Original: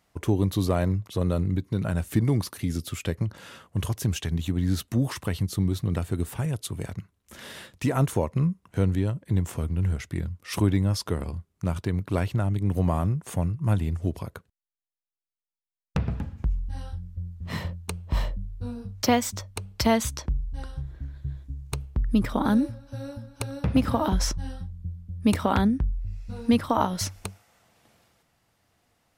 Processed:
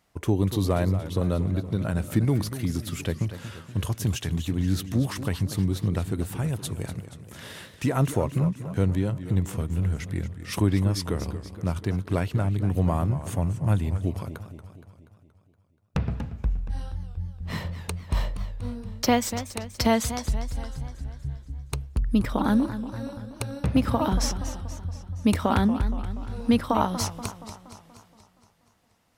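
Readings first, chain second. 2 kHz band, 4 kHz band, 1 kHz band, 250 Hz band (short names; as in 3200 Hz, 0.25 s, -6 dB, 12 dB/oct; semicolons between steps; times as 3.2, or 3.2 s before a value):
+0.5 dB, +0.5 dB, +0.5 dB, +0.5 dB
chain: warbling echo 0.237 s, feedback 56%, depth 159 cents, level -12 dB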